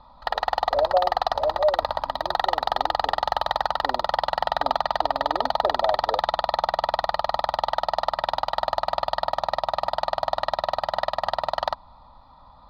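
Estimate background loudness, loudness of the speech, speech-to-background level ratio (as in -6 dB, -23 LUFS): -25.5 LUFS, -28.0 LUFS, -2.5 dB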